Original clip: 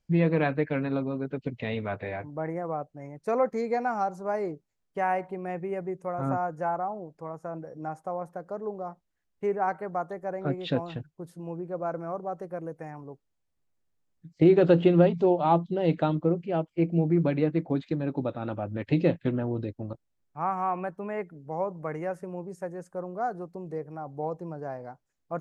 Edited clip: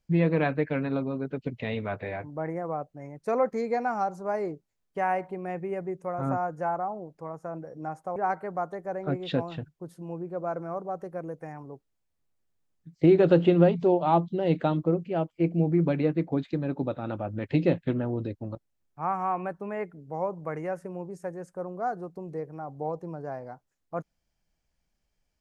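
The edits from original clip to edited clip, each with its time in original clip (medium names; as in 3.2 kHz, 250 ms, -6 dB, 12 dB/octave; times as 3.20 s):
8.16–9.54 s: delete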